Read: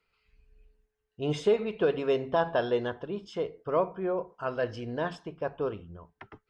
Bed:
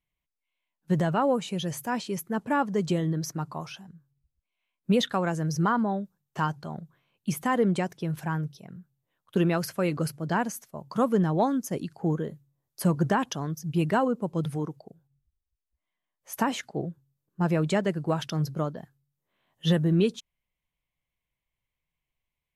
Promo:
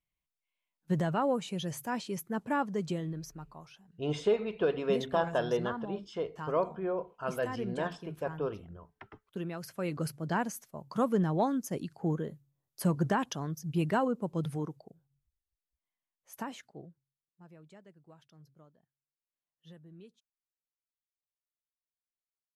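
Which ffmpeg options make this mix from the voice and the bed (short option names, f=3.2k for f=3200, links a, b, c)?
-filter_complex "[0:a]adelay=2800,volume=-3dB[a];[1:a]volume=4.5dB,afade=t=out:st=2.55:d=0.85:silence=0.354813,afade=t=in:st=9.56:d=0.57:silence=0.334965,afade=t=out:st=14.63:d=2.73:silence=0.0530884[b];[a][b]amix=inputs=2:normalize=0"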